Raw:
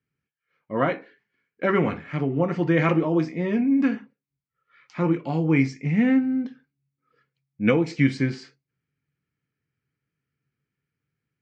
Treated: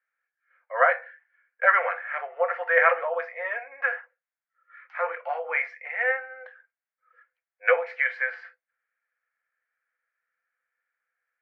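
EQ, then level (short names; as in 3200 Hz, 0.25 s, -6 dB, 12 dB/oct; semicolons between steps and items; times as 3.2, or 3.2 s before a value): rippled Chebyshev high-pass 490 Hz, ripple 6 dB; synth low-pass 1600 Hz, resonance Q 2.8; +3.5 dB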